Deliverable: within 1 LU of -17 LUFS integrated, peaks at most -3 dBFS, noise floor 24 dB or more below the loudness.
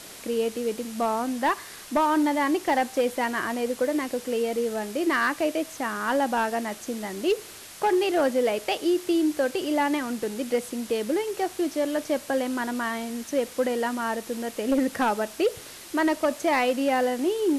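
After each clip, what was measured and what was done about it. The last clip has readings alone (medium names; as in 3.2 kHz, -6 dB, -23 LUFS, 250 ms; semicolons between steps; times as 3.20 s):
clipped samples 0.7%; clipping level -16.5 dBFS; noise floor -43 dBFS; noise floor target -50 dBFS; loudness -26.0 LUFS; peak level -16.5 dBFS; loudness target -17.0 LUFS
-> clip repair -16.5 dBFS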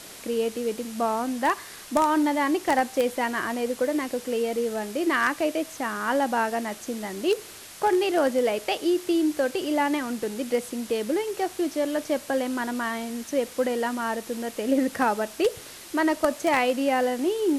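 clipped samples 0.0%; noise floor -43 dBFS; noise floor target -50 dBFS
-> noise reduction 7 dB, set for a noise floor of -43 dBFS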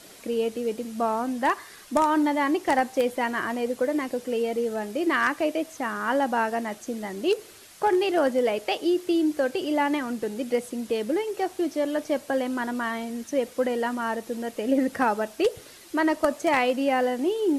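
noise floor -48 dBFS; noise floor target -50 dBFS
-> noise reduction 6 dB, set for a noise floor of -48 dBFS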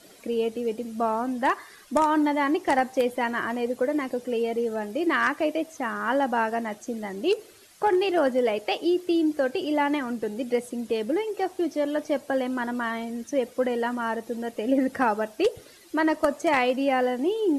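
noise floor -51 dBFS; loudness -26.0 LUFS; peak level -8.0 dBFS; loudness target -17.0 LUFS
-> trim +9 dB; peak limiter -3 dBFS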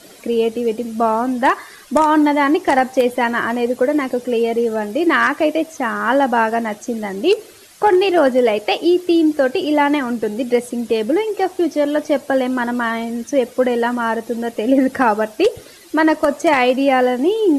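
loudness -17.5 LUFS; peak level -3.0 dBFS; noise floor -42 dBFS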